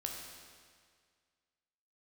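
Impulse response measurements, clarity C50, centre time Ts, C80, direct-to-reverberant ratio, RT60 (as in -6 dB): 2.5 dB, 71 ms, 4.0 dB, 0.5 dB, 1.9 s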